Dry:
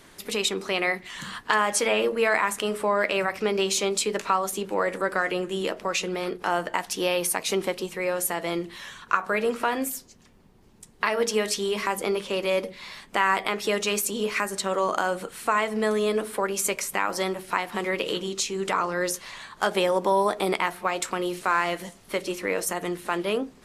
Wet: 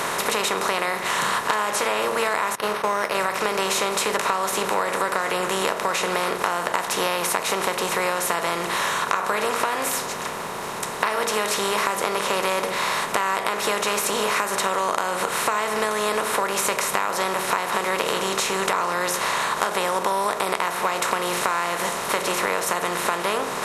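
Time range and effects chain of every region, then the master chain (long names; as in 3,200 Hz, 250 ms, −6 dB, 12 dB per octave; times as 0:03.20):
0:02.55–0:03.15: downward expander −24 dBFS + linearly interpolated sample-rate reduction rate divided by 6×
whole clip: compressor on every frequency bin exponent 0.4; octave-band graphic EQ 125/250/1,000 Hz +7/−7/+6 dB; downward compressor, threshold −18 dBFS; level −1 dB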